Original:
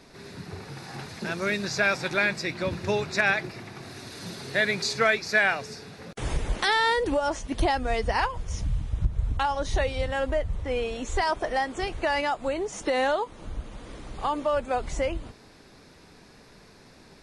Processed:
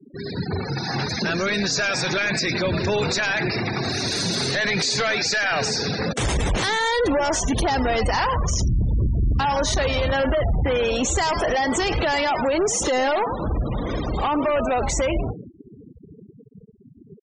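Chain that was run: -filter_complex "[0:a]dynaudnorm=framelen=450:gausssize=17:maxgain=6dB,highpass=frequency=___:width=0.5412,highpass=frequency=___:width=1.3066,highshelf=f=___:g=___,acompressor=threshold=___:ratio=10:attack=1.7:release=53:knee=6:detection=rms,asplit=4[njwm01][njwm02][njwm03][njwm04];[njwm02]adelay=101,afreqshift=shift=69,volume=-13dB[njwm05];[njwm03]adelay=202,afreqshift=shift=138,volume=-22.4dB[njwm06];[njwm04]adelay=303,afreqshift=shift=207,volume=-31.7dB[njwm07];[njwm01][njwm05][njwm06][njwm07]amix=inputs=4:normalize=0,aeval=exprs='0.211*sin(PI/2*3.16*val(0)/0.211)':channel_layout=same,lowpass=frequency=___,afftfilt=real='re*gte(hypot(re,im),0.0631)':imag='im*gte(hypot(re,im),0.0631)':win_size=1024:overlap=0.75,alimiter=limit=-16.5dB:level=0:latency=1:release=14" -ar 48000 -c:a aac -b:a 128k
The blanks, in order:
40, 40, 4900, 11.5, -23dB, 8900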